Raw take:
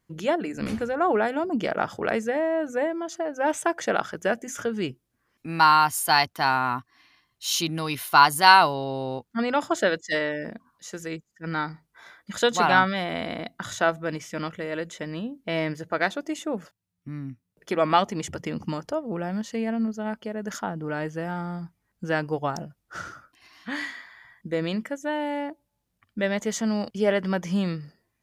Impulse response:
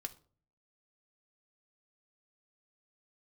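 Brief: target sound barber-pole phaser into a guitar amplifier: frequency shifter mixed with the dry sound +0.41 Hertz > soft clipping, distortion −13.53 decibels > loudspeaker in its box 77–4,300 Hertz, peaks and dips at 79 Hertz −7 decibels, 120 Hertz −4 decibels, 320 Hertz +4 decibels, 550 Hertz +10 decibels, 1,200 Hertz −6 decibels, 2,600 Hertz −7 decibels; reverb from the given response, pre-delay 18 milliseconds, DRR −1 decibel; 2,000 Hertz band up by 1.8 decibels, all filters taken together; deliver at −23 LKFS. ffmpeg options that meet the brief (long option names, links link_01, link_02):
-filter_complex "[0:a]equalizer=frequency=2000:width_type=o:gain=5,asplit=2[link_01][link_02];[1:a]atrim=start_sample=2205,adelay=18[link_03];[link_02][link_03]afir=irnorm=-1:irlink=0,volume=3.5dB[link_04];[link_01][link_04]amix=inputs=2:normalize=0,asplit=2[link_05][link_06];[link_06]afreqshift=0.41[link_07];[link_05][link_07]amix=inputs=2:normalize=1,asoftclip=threshold=-9.5dB,highpass=77,equalizer=frequency=79:width_type=q:width=4:gain=-7,equalizer=frequency=120:width_type=q:width=4:gain=-4,equalizer=frequency=320:width_type=q:width=4:gain=4,equalizer=frequency=550:width_type=q:width=4:gain=10,equalizer=frequency=1200:width_type=q:width=4:gain=-6,equalizer=frequency=2600:width_type=q:width=4:gain=-7,lowpass=frequency=4300:width=0.5412,lowpass=frequency=4300:width=1.3066"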